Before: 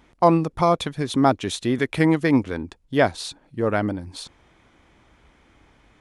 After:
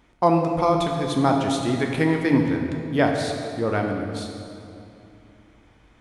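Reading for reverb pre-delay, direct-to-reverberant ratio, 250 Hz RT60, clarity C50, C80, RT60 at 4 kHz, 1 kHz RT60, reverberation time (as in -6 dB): 11 ms, 1.5 dB, 3.2 s, 3.5 dB, 4.5 dB, 1.8 s, 2.4 s, 2.6 s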